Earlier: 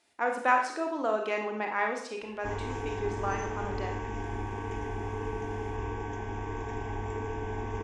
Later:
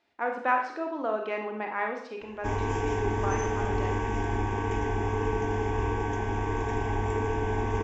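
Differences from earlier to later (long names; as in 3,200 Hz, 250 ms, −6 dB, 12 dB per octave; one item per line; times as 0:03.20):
speech: add high-frequency loss of the air 200 metres
background +6.5 dB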